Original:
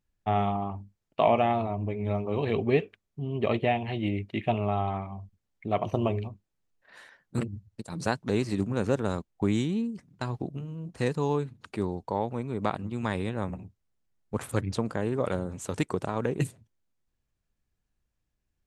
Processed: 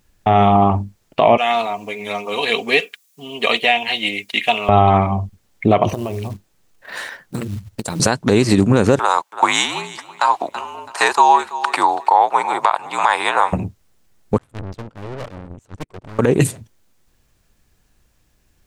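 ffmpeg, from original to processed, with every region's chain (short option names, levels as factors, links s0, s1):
-filter_complex "[0:a]asettb=1/sr,asplit=3[s0][s1][s2];[s0]atrim=end=1.374[s3];[s1]atrim=start=1.37:end=4.69,asetpts=PTS-STARTPTS,afade=t=in:d=0.004:c=qsin,afade=t=out:st=3.316:d=0.004:c=qsin,aderivative,aecho=1:1:4.2:0.52,atrim=end_sample=146412,acontrast=69[s4];[s2]atrim=start=4.686[s5];[s3][s4]acrossfade=d=0.004:c1=hsin:c2=qsin[s6];[s6][s5]acrossfade=d=0.004:c1=qsin:c2=hsin,asettb=1/sr,asplit=3[s7][s8][s9];[s7]atrim=end=5.894[s10];[s8]atrim=start=5.89:end=8,asetpts=PTS-STARTPTS,afade=t=in:d=0.004:c=qsin,afade=t=out:st=2.106:d=0.004:c=qsin,acompressor=threshold=0.01:ratio=16:attack=3.2:release=140:knee=1:detection=peak,acrusher=bits=6:mode=log:mix=0:aa=0.000001[s11];[s9]atrim=start=7.996[s12];[s10][s11]acrossfade=d=0.004:c1=hsin:c2=qsin[s13];[s13][s12]acrossfade=d=0.004:c1=qsin:c2=hsin,asettb=1/sr,asplit=3[s14][s15][s16];[s14]atrim=end=8.994[s17];[s15]atrim=start=8.99:end=13.53,asetpts=PTS-STARTPTS,afade=t=in:d=0.004:c=qsin,afade=t=out:st=4.536:d=0.004:c=qsin,afreqshift=-58,highpass=f=930:t=q:w=3.4,aecho=1:1:330|660|990:0.112|0.0359|0.0115,atrim=end_sample=200214[s18];[s16]atrim=start=13.526[s19];[s17][s18]acrossfade=d=0.004:c1=hsin:c2=qsin[s20];[s20][s19]acrossfade=d=0.004:c1=qsin:c2=hsin,asettb=1/sr,asplit=3[s21][s22][s23];[s21]atrim=end=14.384[s24];[s22]atrim=start=14.38:end=16.19,asetpts=PTS-STARTPTS,afade=t=in:d=0.004:c=qsin,afade=t=out:st=1.806:d=0.004:c=qsin,aemphasis=mode=reproduction:type=bsi,aeval=exprs='(tanh(79.4*val(0)+0.6)-tanh(0.6))/79.4':c=same,agate=range=0.0251:threshold=0.0141:ratio=16:release=100:detection=peak[s25];[s23]atrim=start=16.186[s26];[s24][s25]acrossfade=d=0.004:c1=hsin:c2=qsin[s27];[s27][s26]acrossfade=d=0.004:c1=qsin:c2=hsin,bass=f=250:g=-3,treble=f=4000:g=2,acompressor=threshold=0.0355:ratio=5,alimiter=level_in=14.1:limit=0.891:release=50:level=0:latency=1,volume=0.891"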